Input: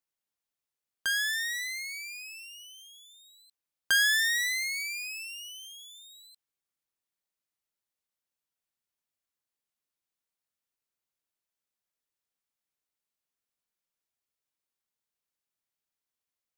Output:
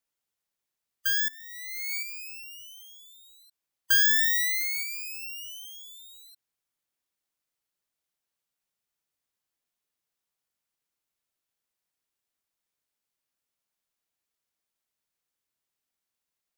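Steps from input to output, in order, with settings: spectral gate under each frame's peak -25 dB strong; 1.28–2.03 negative-ratio compressor -39 dBFS, ratio -0.5; 4.83–5.23 bell 1500 Hz -3.5 dB 3 oct; careless resampling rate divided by 2×, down none, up zero stuff

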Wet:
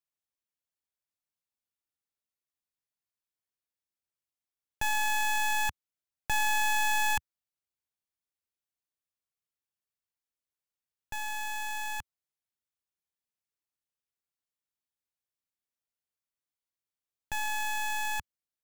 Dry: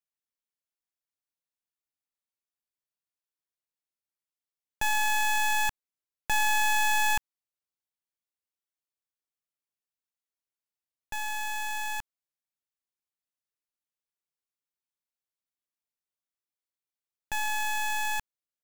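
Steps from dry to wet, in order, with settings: bell 81 Hz +6 dB 1.7 oct; gain -2.5 dB

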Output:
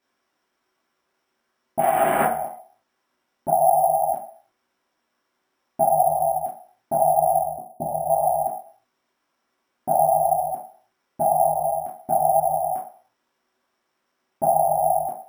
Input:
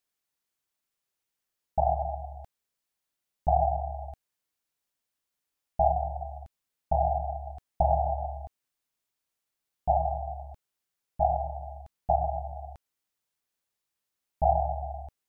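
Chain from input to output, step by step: 1.79–2.23 delta modulation 16 kbps, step -25.5 dBFS; 3.5–4.1 low shelf 150 Hz -10.5 dB; compressor 3:1, threshold -30 dBFS, peak gain reduction 9.5 dB; limiter -28.5 dBFS, peak gain reduction 10.5 dB; 7.42–8.1 Gaussian blur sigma 12 samples; reverb RT60 0.50 s, pre-delay 3 ms, DRR -7 dB; careless resampling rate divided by 4×, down none, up hold

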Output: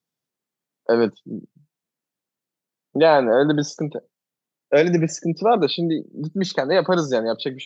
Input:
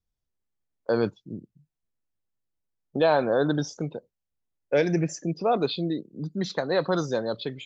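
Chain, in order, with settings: HPF 150 Hz 24 dB/oct; gain +6.5 dB

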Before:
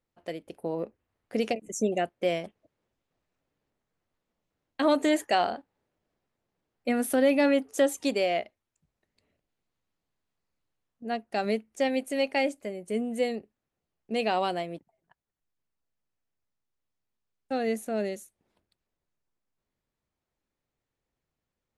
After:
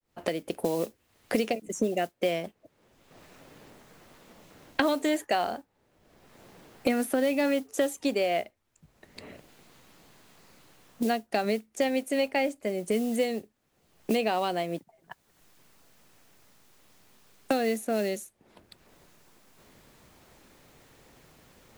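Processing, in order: opening faded in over 0.88 s; modulation noise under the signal 25 dB; three-band squash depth 100%

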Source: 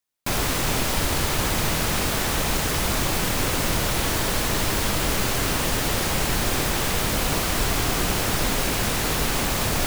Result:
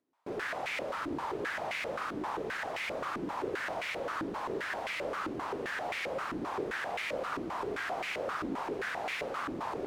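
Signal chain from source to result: upward compressor, threshold -41 dBFS; stepped band-pass 7.6 Hz 310–2200 Hz

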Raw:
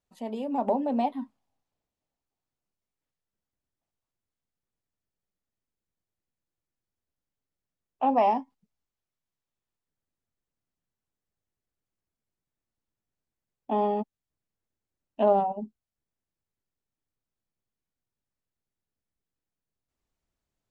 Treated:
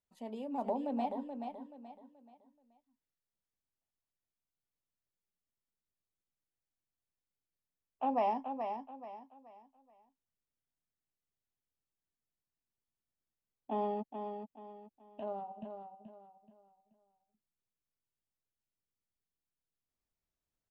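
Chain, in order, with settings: 15.2–15.63 resonator 110 Hz, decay 1.1 s, harmonics odd, mix 70%; feedback echo 0.429 s, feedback 33%, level -7 dB; gain -9 dB

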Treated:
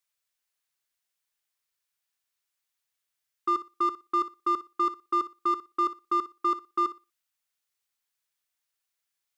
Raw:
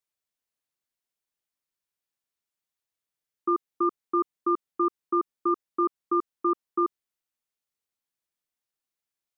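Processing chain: EQ curve 120 Hz 0 dB, 200 Hz -7 dB, 1600 Hz +7 dB; in parallel at -6 dB: hard clip -27 dBFS, distortion -8 dB; on the sum: flutter echo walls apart 10.2 m, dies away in 0.25 s; gain -5 dB

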